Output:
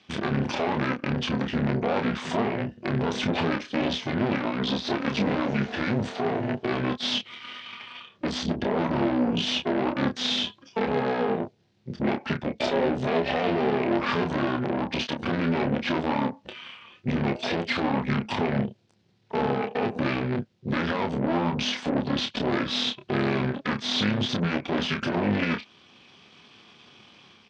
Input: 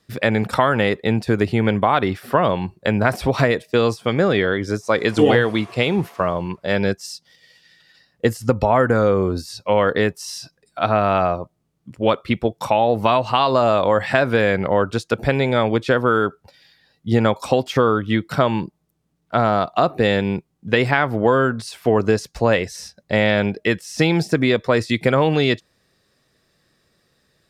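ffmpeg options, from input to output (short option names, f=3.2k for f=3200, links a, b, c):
-filter_complex "[0:a]aemphasis=mode=production:type=50kf,dynaudnorm=f=270:g=3:m=5dB,alimiter=limit=-16.5dB:level=0:latency=1:release=179,acontrast=35,asoftclip=type=tanh:threshold=-20.5dB,asetrate=28595,aresample=44100,atempo=1.54221,tremolo=f=250:d=0.71,aeval=exprs='0.119*(cos(1*acos(clip(val(0)/0.119,-1,1)))-cos(1*PI/2))+0.0335*(cos(4*acos(clip(val(0)/0.119,-1,1)))-cos(4*PI/2))':c=same,highpass=160,equalizer=f=210:t=q:w=4:g=6,equalizer=f=300:t=q:w=4:g=-5,equalizer=f=1.2k:t=q:w=4:g=-4,lowpass=f=4.4k:w=0.5412,lowpass=f=4.4k:w=1.3066,asplit=2[a][b];[b]adelay=29,volume=-6dB[c];[a][c]amix=inputs=2:normalize=0,volume=3dB"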